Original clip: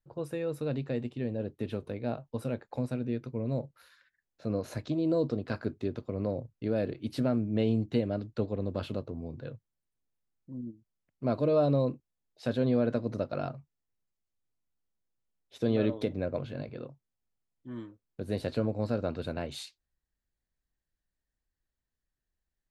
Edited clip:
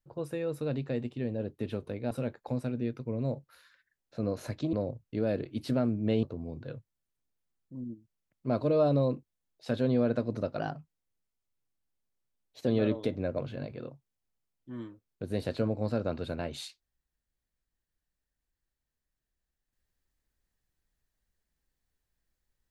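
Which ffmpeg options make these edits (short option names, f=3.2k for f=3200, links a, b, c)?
-filter_complex "[0:a]asplit=6[a][b][c][d][e][f];[a]atrim=end=2.112[g];[b]atrim=start=2.378:end=5.002[h];[c]atrim=start=6.218:end=7.722[i];[d]atrim=start=8.998:end=13.364[j];[e]atrim=start=13.36:end=15.65,asetpts=PTS-STARTPTS,asetrate=48510,aresample=44100,atrim=end_sample=91808,asetpts=PTS-STARTPTS[k];[f]atrim=start=15.646[l];[g][h]acrossfade=d=0.004:c1=hsin:c2=hsin[m];[m][i]acrossfade=d=0.004:c1=hsin:c2=hsin[n];[n][j]acrossfade=d=0.004:c1=hsin:c2=hsin[o];[o][k]acrossfade=d=0.004:c1=hsin:c2=hsin[p];[p][l]acrossfade=d=0.004:c1=hsin:c2=hsin"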